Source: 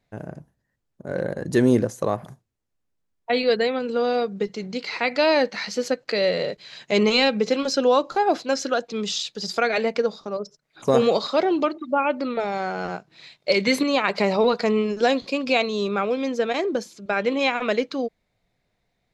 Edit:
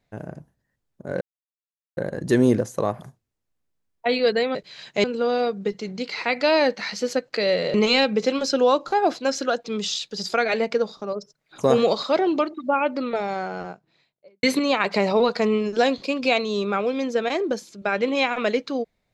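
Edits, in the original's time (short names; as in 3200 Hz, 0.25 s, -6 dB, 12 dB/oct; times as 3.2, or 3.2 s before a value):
1.21 insert silence 0.76 s
6.49–6.98 move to 3.79
12.37–13.67 studio fade out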